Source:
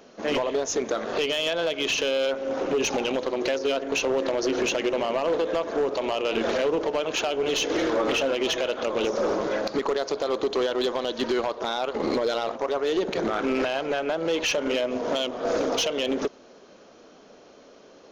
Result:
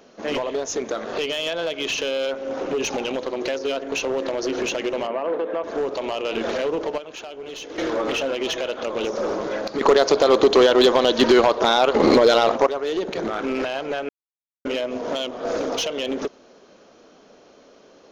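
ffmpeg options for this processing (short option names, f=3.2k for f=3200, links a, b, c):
-filter_complex "[0:a]asettb=1/sr,asplit=3[a][b][c];[a]atrim=end=5.074[d];[b]atrim=start=5.07:end=5.64,asetpts=PTS-STARTPTS,afade=t=in:d=0.004:c=qsin,afade=t=out:st=0.566:d=0.004:c=qsin,acrossover=split=180 2500:gain=0.158 1 0.0794[e][f][g];[e][f][g]amix=inputs=3:normalize=0[h];[c]atrim=start=5.636[i];[d][h]acrossfade=d=0.004:c1=hsin:c2=qsin[j];[j][i]acrossfade=d=0.004:c1=qsin:c2=hsin,asplit=7[k][l][m][n][o][p][q];[k]atrim=end=6.982[r];[l]atrim=start=6.978:end=7.782,asetpts=PTS-STARTPTS,volume=-10dB[s];[m]atrim=start=7.778:end=9.812[t];[n]atrim=start=9.808:end=12.672,asetpts=PTS-STARTPTS,volume=10.5dB[u];[o]atrim=start=12.668:end=14.09,asetpts=PTS-STARTPTS,afade=t=out:st=1.418:d=0.004:c=hsin[v];[p]atrim=start=14.09:end=14.65,asetpts=PTS-STARTPTS,volume=0[w];[q]atrim=start=14.65,asetpts=PTS-STARTPTS,afade=t=in:d=0.004:c=hsin[x];[r][s]acrossfade=d=0.004:c1=hsin:c2=hsin[y];[y][t]acrossfade=d=0.004:c1=hsin:c2=hsin[z];[z][u]acrossfade=d=0.004:c1=hsin:c2=hsin[aa];[v][w][x]concat=n=3:v=0:a=1[ab];[aa][ab]acrossfade=d=0.004:c1=hsin:c2=hsin"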